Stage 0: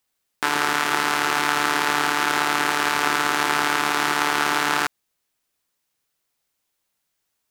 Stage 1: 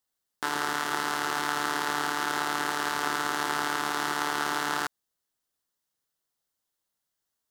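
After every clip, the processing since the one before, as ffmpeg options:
ffmpeg -i in.wav -af "equalizer=frequency=2400:width=4:gain=-9.5,volume=-7dB" out.wav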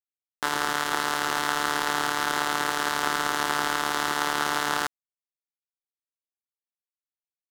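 ffmpeg -i in.wav -af "aeval=exprs='sgn(val(0))*max(abs(val(0))-0.0126,0)':channel_layout=same,volume=4.5dB" out.wav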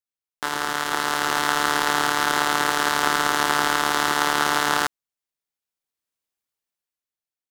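ffmpeg -i in.wav -af "dynaudnorm=framelen=230:gausssize=9:maxgain=11dB" out.wav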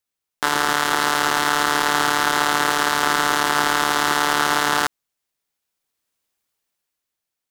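ffmpeg -i in.wav -af "alimiter=level_in=10dB:limit=-1dB:release=50:level=0:latency=1,volume=-1dB" out.wav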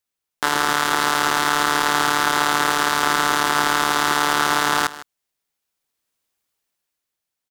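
ffmpeg -i in.wav -af "aecho=1:1:156:0.15" out.wav

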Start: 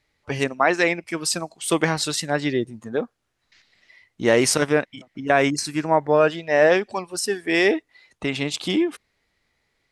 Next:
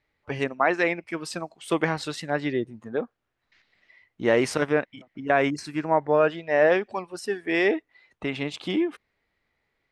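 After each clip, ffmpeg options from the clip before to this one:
ffmpeg -i in.wav -af "bass=frequency=250:gain=-2,treble=frequency=4000:gain=-13,volume=-3dB" out.wav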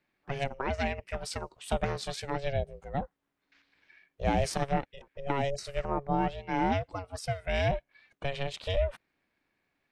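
ffmpeg -i in.wav -filter_complex "[0:a]acrossover=split=490|3000[link_01][link_02][link_03];[link_02]acompressor=threshold=-37dB:ratio=3[link_04];[link_01][link_04][link_03]amix=inputs=3:normalize=0,aeval=exprs='val(0)*sin(2*PI*280*n/s)':channel_layout=same" out.wav

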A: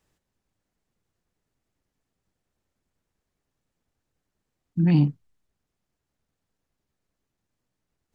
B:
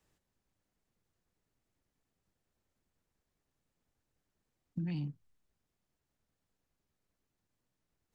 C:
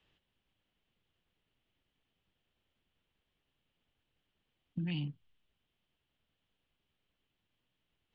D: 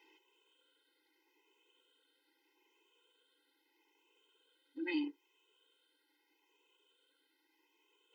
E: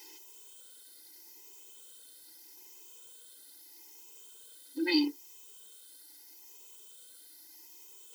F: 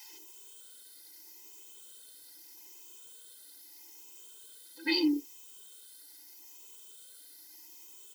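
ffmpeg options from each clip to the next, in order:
ffmpeg -i in.wav -filter_complex "[0:a]acrossover=split=110|2000[link_01][link_02][link_03];[link_02]alimiter=limit=-22dB:level=0:latency=1[link_04];[link_01][link_04][link_03]amix=inputs=3:normalize=0,acompressor=threshold=-31dB:ratio=6,volume=-3.5dB" out.wav
ffmpeg -i in.wav -af "lowpass=frequency=3100:width_type=q:width=4.9" out.wav
ffmpeg -i in.wav -af "afftfilt=real='re*pow(10,10/40*sin(2*PI*(0.74*log(max(b,1)*sr/1024/100)/log(2)-(0.79)*(pts-256)/sr)))':imag='im*pow(10,10/40*sin(2*PI*(0.74*log(max(b,1)*sr/1024/100)/log(2)-(0.79)*(pts-256)/sr)))':win_size=1024:overlap=0.75,alimiter=level_in=8dB:limit=-24dB:level=0:latency=1:release=172,volume=-8dB,afftfilt=real='re*eq(mod(floor(b*sr/1024/270),2),1)':imag='im*eq(mod(floor(b*sr/1024/270),2),1)':win_size=1024:overlap=0.75,volume=11dB" out.wav
ffmpeg -i in.wav -af "aexciter=amount=9.8:drive=7:freq=4300,volume=8.5dB" out.wav
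ffmpeg -i in.wav -filter_complex "[0:a]acrossover=split=570[link_01][link_02];[link_01]adelay=90[link_03];[link_03][link_02]amix=inputs=2:normalize=0,volume=1dB" out.wav

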